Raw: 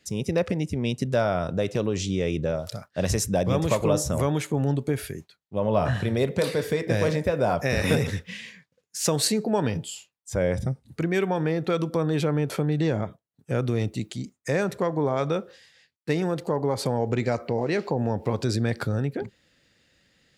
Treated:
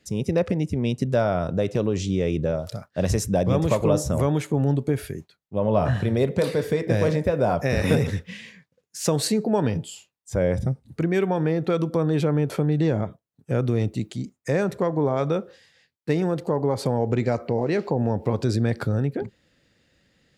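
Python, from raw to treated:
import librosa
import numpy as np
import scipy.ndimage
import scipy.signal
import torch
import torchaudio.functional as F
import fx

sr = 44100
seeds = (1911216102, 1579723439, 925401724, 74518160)

y = fx.tilt_shelf(x, sr, db=3.0, hz=1100.0)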